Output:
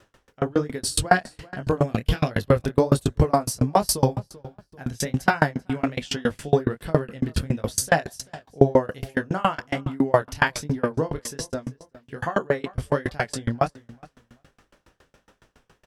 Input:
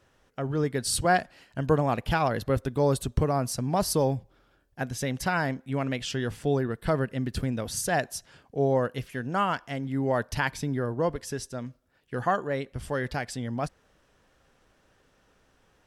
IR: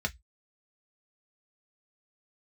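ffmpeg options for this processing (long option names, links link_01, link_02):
-filter_complex "[0:a]asettb=1/sr,asplit=3[link_01][link_02][link_03];[link_01]atrim=end=1.804[link_04];[link_02]atrim=start=1.8:end=2.31,asetpts=PTS-STARTPTS,afade=type=in:duration=0.004:curve=qsin,afade=type=out:start_time=0.506:duration=0.004:curve=qsin,equalizer=frequency=900:width_type=o:width=0.97:gain=-15[link_05];[link_03]atrim=start=2.306[link_06];[link_04][link_05]acrossfade=duration=0.004:curve1=hsin:curve2=qsin[link_07];[link_07][link_06]acrossfade=duration=0.004:curve1=qsin:curve2=hsin,flanger=delay=19:depth=7.7:speed=1.3,asplit=2[link_08][link_09];[link_09]adelay=389,lowpass=frequency=4400:poles=1,volume=-20dB,asplit=2[link_10][link_11];[link_11]adelay=389,lowpass=frequency=4400:poles=1,volume=0.29[link_12];[link_10][link_12]amix=inputs=2:normalize=0[link_13];[link_08][link_13]amix=inputs=2:normalize=0,alimiter=level_in=16dB:limit=-1dB:release=50:level=0:latency=1,aeval=exprs='val(0)*pow(10,-31*if(lt(mod(7.2*n/s,1),2*abs(7.2)/1000),1-mod(7.2*n/s,1)/(2*abs(7.2)/1000),(mod(7.2*n/s,1)-2*abs(7.2)/1000)/(1-2*abs(7.2)/1000))/20)':channel_layout=same"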